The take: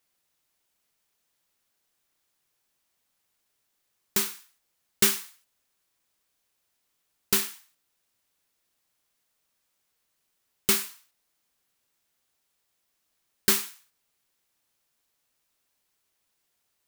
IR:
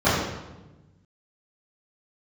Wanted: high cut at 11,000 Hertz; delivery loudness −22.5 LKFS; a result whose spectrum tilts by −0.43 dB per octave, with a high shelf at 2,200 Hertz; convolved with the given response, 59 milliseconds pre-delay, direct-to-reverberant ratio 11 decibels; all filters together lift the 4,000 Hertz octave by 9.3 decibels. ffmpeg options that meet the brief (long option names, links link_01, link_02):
-filter_complex "[0:a]lowpass=11000,highshelf=frequency=2200:gain=7.5,equalizer=frequency=4000:width_type=o:gain=4.5,asplit=2[link_01][link_02];[1:a]atrim=start_sample=2205,adelay=59[link_03];[link_02][link_03]afir=irnorm=-1:irlink=0,volume=-32dB[link_04];[link_01][link_04]amix=inputs=2:normalize=0,volume=-1.5dB"